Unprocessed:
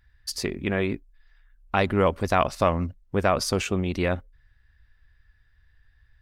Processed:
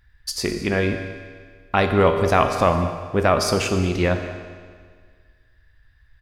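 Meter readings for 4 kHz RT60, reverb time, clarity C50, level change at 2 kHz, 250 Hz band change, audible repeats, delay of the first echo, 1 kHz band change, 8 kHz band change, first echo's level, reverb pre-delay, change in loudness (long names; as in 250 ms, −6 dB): 1.6 s, 1.8 s, 7.0 dB, +5.0 dB, +4.0 dB, 1, 207 ms, +5.0 dB, +4.5 dB, −17.0 dB, 9 ms, +5.0 dB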